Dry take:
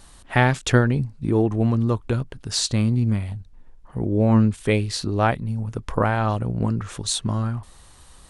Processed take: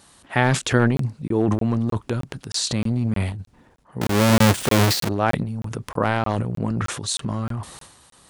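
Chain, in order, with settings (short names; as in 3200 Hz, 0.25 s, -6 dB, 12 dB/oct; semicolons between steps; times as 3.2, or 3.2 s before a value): 4.01–5.09 half-waves squared off; HPF 120 Hz 12 dB/oct; transient shaper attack 0 dB, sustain +12 dB; crackling interface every 0.31 s, samples 1024, zero, from 0.97; gain -1 dB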